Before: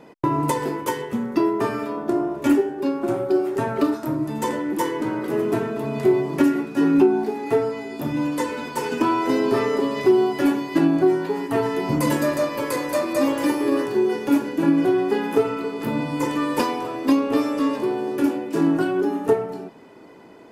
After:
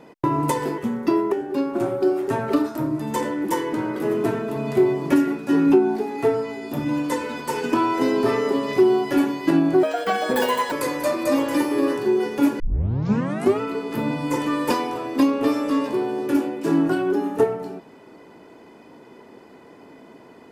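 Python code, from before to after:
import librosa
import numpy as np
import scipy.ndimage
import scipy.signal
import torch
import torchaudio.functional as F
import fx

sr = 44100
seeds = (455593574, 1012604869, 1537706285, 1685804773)

y = fx.edit(x, sr, fx.cut(start_s=0.78, length_s=0.29),
    fx.cut(start_s=1.61, length_s=0.99),
    fx.speed_span(start_s=11.11, length_s=1.5, speed=1.69),
    fx.tape_start(start_s=14.49, length_s=1.01), tone=tone)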